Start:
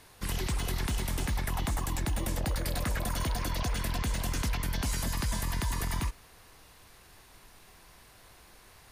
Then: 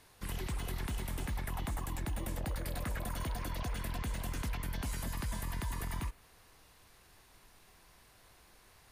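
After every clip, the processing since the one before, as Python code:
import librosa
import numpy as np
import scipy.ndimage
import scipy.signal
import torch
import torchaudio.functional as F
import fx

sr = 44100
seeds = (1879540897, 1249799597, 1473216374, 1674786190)

y = fx.dynamic_eq(x, sr, hz=5500.0, q=1.1, threshold_db=-55.0, ratio=4.0, max_db=-6)
y = F.gain(torch.from_numpy(y), -6.0).numpy()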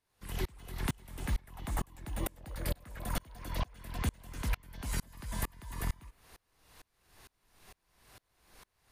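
y = fx.tremolo_decay(x, sr, direction='swelling', hz=2.2, depth_db=33)
y = F.gain(torch.from_numpy(y), 8.5).numpy()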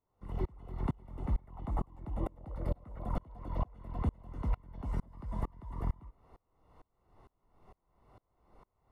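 y = scipy.signal.savgol_filter(x, 65, 4, mode='constant')
y = F.gain(torch.from_numpy(y), 1.0).numpy()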